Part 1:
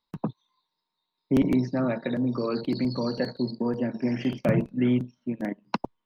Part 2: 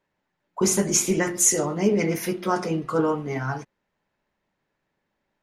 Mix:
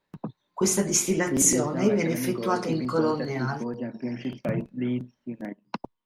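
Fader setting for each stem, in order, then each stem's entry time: -5.0 dB, -2.0 dB; 0.00 s, 0.00 s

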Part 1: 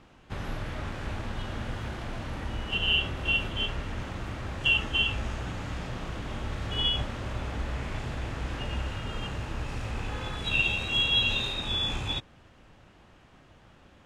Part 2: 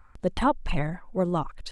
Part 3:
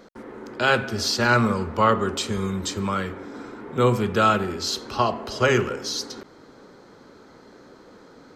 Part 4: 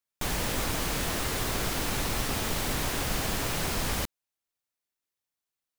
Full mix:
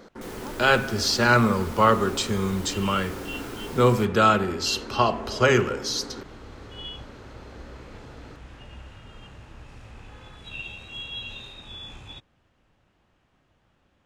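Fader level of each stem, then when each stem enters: -11.0 dB, -20.0 dB, +0.5 dB, -12.5 dB; 0.00 s, 0.00 s, 0.00 s, 0.00 s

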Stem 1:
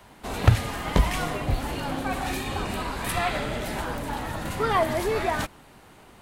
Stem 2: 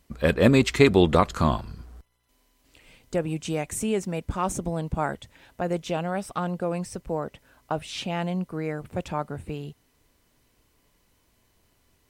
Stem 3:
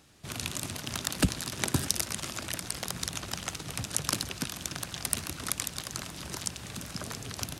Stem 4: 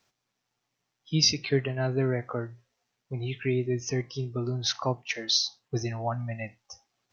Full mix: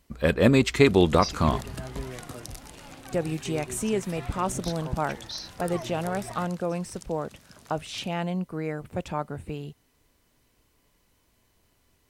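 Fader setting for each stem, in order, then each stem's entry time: -17.5 dB, -1.0 dB, -14.5 dB, -12.0 dB; 1.00 s, 0.00 s, 0.55 s, 0.00 s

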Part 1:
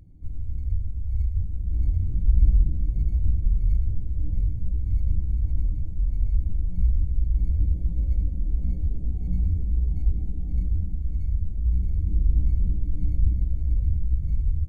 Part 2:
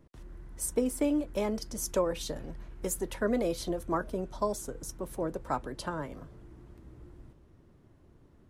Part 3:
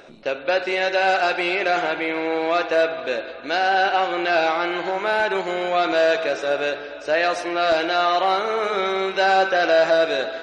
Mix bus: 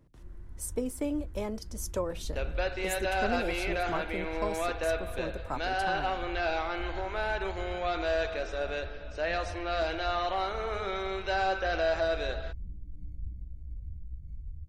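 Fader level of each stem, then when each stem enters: -18.0 dB, -4.0 dB, -11.5 dB; 0.00 s, 0.00 s, 2.10 s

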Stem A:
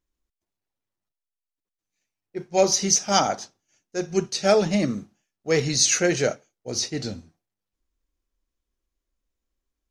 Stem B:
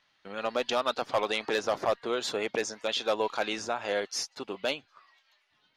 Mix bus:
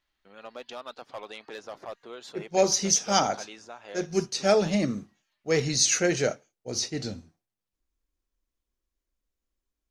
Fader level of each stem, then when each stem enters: -3.0 dB, -12.0 dB; 0.00 s, 0.00 s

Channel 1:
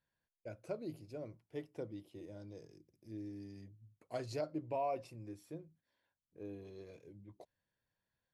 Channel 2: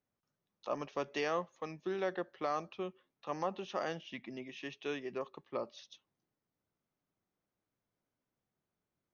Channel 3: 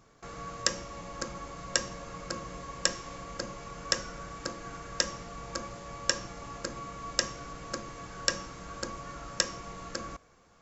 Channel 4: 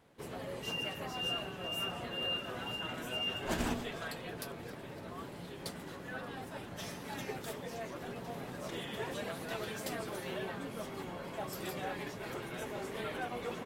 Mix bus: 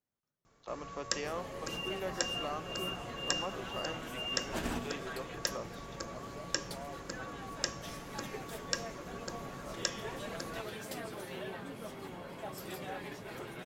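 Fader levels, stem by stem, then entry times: -11.0 dB, -4.5 dB, -6.5 dB, -2.5 dB; 2.00 s, 0.00 s, 0.45 s, 1.05 s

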